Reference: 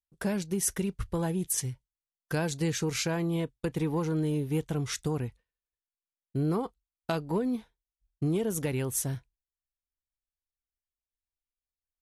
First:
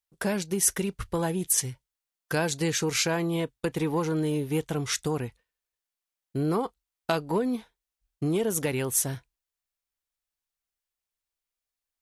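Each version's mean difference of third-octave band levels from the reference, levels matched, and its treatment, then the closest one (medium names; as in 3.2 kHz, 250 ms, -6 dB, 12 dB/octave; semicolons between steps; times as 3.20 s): 2.5 dB: bass shelf 250 Hz -9 dB; trim +6 dB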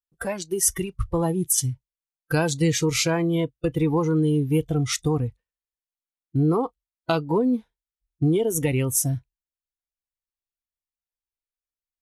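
5.5 dB: spectral noise reduction 14 dB; trim +8.5 dB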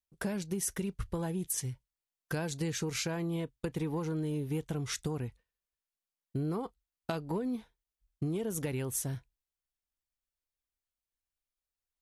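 1.0 dB: compression 3:1, threshold -32 dBFS, peak gain reduction 6.5 dB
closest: third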